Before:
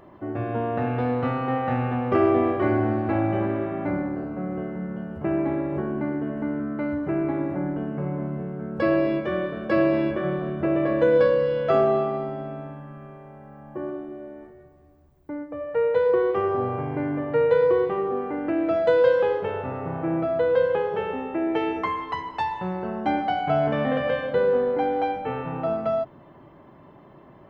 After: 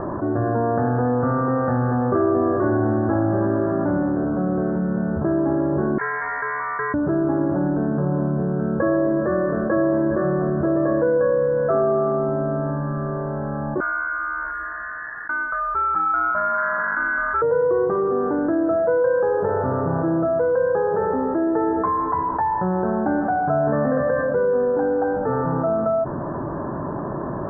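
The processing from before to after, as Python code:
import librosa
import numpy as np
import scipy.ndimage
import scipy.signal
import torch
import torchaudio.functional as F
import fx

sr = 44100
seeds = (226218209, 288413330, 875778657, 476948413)

y = fx.freq_invert(x, sr, carrier_hz=2500, at=(5.98, 6.94))
y = fx.ring_mod(y, sr, carrier_hz=1800.0, at=(13.8, 17.42))
y = scipy.signal.sosfilt(scipy.signal.butter(16, 1700.0, 'lowpass', fs=sr, output='sos'), y)
y = fx.notch(y, sr, hz=780.0, q=25.0)
y = fx.env_flatten(y, sr, amount_pct=70)
y = y * librosa.db_to_amplitude(-2.0)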